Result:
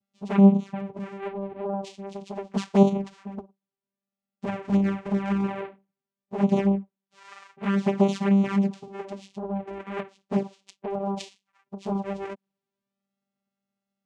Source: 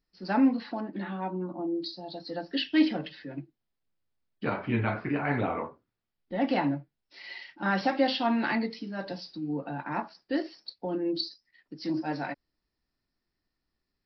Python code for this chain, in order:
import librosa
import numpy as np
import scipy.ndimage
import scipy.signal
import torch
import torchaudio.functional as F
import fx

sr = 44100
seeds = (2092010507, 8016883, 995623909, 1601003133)

y = fx.vocoder(x, sr, bands=4, carrier='saw', carrier_hz=197.0)
y = fx.env_flanger(y, sr, rest_ms=8.7, full_db=-23.0)
y = y * 10.0 ** (6.5 / 20.0)